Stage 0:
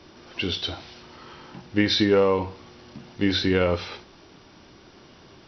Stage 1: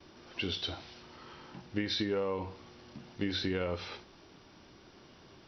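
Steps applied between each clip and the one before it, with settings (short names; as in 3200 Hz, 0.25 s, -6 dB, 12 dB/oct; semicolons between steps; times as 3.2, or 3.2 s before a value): gate with hold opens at -44 dBFS; compressor 5:1, threshold -23 dBFS, peak gain reduction 7.5 dB; gain -6.5 dB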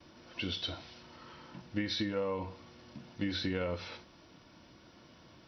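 notch comb 400 Hz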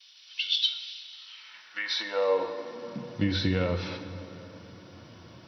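high-pass sweep 3400 Hz -> 100 Hz, 1.25–3.28; plate-style reverb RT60 3.8 s, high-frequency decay 0.6×, DRR 8.5 dB; gain +5.5 dB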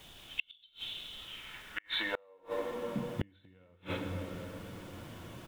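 downsampling 8000 Hz; added noise pink -58 dBFS; flipped gate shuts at -21 dBFS, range -36 dB; gain +1.5 dB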